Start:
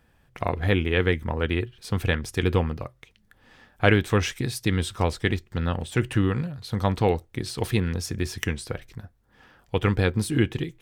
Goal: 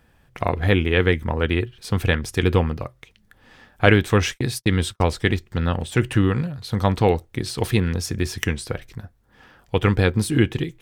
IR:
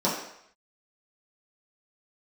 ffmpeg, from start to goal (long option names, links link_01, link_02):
-filter_complex "[0:a]asettb=1/sr,asplit=3[link_01][link_02][link_03];[link_01]atrim=end=3.864[link_04];[link_02]atrim=start=3.86:end=5.11,asetpts=PTS-STARTPTS,afade=type=in:duration=0.004:curve=qsin,afade=type=out:start_time=1.246:duration=0.004:curve=qsin,agate=range=-44dB:threshold=-32dB:ratio=16:detection=peak[link_05];[link_03]atrim=start=5.106[link_06];[link_04][link_05]acrossfade=duration=0.004:curve1=hsin:curve2=qsin[link_07];[link_07][link_06]acrossfade=duration=0.004:curve1=qsin:curve2=hsin,volume=4dB"